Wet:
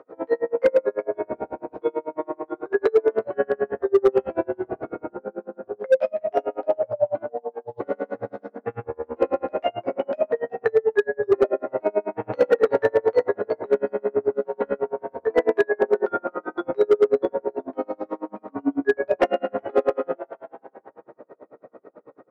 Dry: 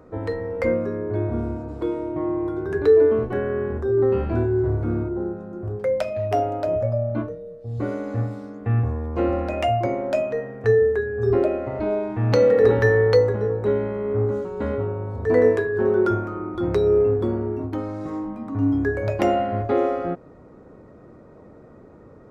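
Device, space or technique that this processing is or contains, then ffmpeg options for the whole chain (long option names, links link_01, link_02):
helicopter radio: -filter_complex "[0:a]equalizer=frequency=570:width_type=o:width=1.1:gain=4.5,bandreject=frequency=50:width_type=h:width=6,bandreject=frequency=100:width_type=h:width=6,bandreject=frequency=150:width_type=h:width=6,bandreject=frequency=200:width_type=h:width=6,bandreject=frequency=250:width_type=h:width=6,bandreject=frequency=300:width_type=h:width=6,bandreject=frequency=350:width_type=h:width=6,asplit=2[link_01][link_02];[link_02]adelay=15,volume=-4dB[link_03];[link_01][link_03]amix=inputs=2:normalize=0,asplit=4[link_04][link_05][link_06][link_07];[link_05]adelay=370,afreqshift=130,volume=-16.5dB[link_08];[link_06]adelay=740,afreqshift=260,volume=-25.9dB[link_09];[link_07]adelay=1110,afreqshift=390,volume=-35.2dB[link_10];[link_04][link_08][link_09][link_10]amix=inputs=4:normalize=0,highpass=350,lowpass=2500,aeval=exprs='val(0)*pow(10,-36*(0.5-0.5*cos(2*PI*9.1*n/s))/20)':channel_layout=same,asoftclip=type=hard:threshold=-14.5dB,volume=5dB"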